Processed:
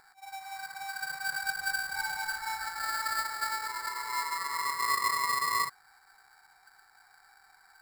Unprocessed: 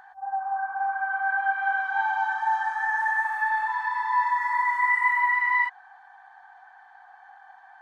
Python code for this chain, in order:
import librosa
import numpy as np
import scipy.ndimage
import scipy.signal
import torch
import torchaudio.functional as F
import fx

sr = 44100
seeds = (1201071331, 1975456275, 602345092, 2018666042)

y = scipy.signal.sosfilt(scipy.signal.butter(2, 1300.0, 'highpass', fs=sr, output='sos'), x)
y = fx.sample_hold(y, sr, seeds[0], rate_hz=3100.0, jitter_pct=0)
y = F.gain(torch.from_numpy(y), -4.5).numpy()